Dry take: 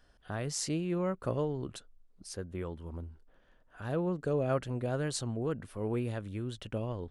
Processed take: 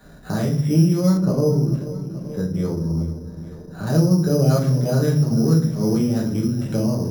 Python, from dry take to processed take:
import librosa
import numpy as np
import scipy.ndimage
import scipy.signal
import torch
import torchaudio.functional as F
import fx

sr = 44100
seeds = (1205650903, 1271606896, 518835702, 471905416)

y = scipy.signal.sosfilt(scipy.signal.butter(2, 43.0, 'highpass', fs=sr, output='sos'), x)
y = fx.peak_eq(y, sr, hz=170.0, db=12.5, octaves=1.8)
y = fx.hum_notches(y, sr, base_hz=60, count=2)
y = fx.echo_feedback(y, sr, ms=435, feedback_pct=55, wet_db=-17)
y = fx.room_shoebox(y, sr, seeds[0], volume_m3=57.0, walls='mixed', distance_m=1.2)
y = np.repeat(scipy.signal.resample_poly(y, 1, 8), 8)[:len(y)]
y = fx.high_shelf(y, sr, hz=2200.0, db=-9.5, at=(1.17, 3.87))
y = fx.band_squash(y, sr, depth_pct=40)